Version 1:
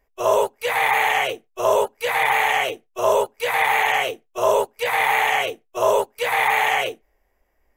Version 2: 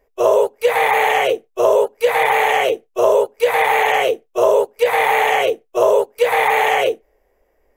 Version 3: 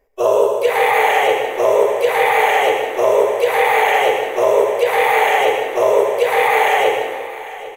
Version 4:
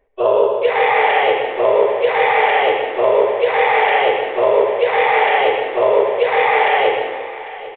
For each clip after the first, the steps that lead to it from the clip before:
bell 470 Hz +11.5 dB 0.97 oct; compressor, threshold -12 dBFS, peak gain reduction 6.5 dB; gain +2 dB
echo 0.798 s -16 dB; on a send at -2 dB: reverb RT60 1.5 s, pre-delay 62 ms; on the sum: gain -1 dB
downsampling 8000 Hz

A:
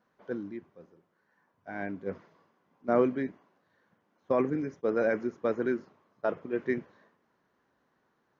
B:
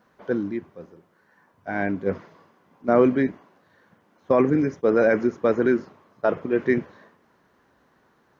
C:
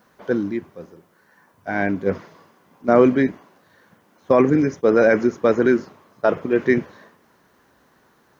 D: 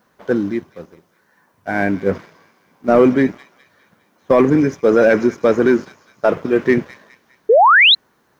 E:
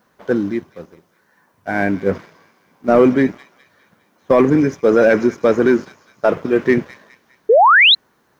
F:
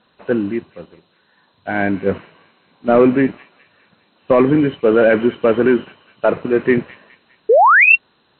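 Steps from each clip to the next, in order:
bell 64 Hz +5.5 dB 1 oct; in parallel at +2 dB: limiter -23.5 dBFS, peak gain reduction 11.5 dB; on the sum: gain +4 dB
high shelf 5300 Hz +10.5 dB; gain +3.5 dB
thin delay 0.204 s, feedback 55%, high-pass 3400 Hz, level -7.5 dB; sample leveller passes 1; painted sound rise, 7.49–7.95, 410–4200 Hz -9 dBFS
nothing audible
nonlinear frequency compression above 2400 Hz 4:1

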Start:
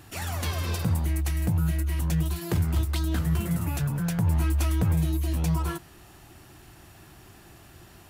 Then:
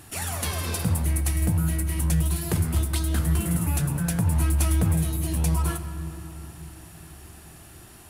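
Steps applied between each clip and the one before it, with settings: bell 10000 Hz +10.5 dB 0.69 oct; on a send at -8.5 dB: reverb RT60 3.6 s, pre-delay 5 ms; on the sum: gain +1 dB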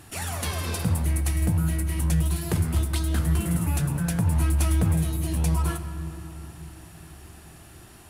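high shelf 8900 Hz -5.5 dB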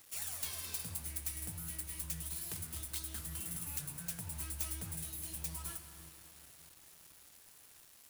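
tracing distortion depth 0.086 ms; pre-emphasis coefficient 0.9; bit-crush 8-bit; gain -5 dB

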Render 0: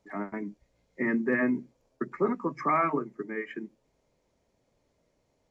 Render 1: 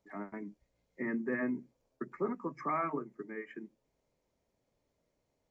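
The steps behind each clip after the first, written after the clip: dynamic EQ 3700 Hz, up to -8 dB, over -51 dBFS, Q 1.3; gain -7.5 dB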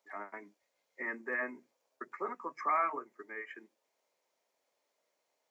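HPF 710 Hz 12 dB/oct; gain +4.5 dB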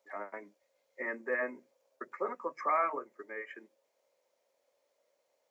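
bell 540 Hz +12 dB 0.37 oct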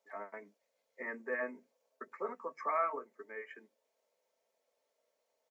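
comb 4.5 ms, depth 49%; gain -4.5 dB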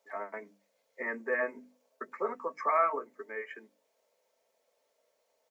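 notches 50/100/150/200/250/300 Hz; gain +6 dB

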